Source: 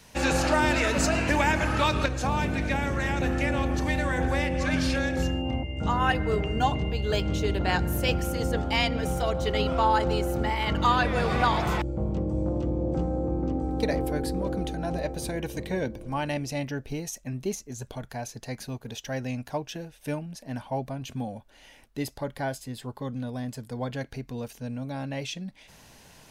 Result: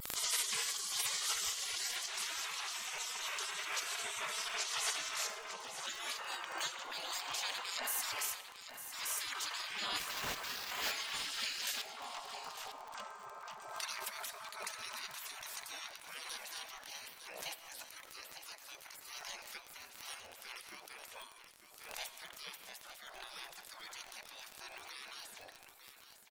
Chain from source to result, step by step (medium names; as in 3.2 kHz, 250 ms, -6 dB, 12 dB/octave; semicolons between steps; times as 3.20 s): octave divider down 2 oct, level -1 dB; 8.34–9.00 s: inverse Chebyshev high-pass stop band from 2.9 kHz, stop band 40 dB; spectral gate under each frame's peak -30 dB weak; 9.99–10.92 s: sample-rate reducer 9.6 kHz, jitter 0%; vibrato 0.31 Hz 9.8 cents; crackle 25 per s -43 dBFS; delay 902 ms -11 dB; algorithmic reverb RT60 1.5 s, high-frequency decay 0.8×, pre-delay 45 ms, DRR 15 dB; swell ahead of each attack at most 62 dB/s; trim +5.5 dB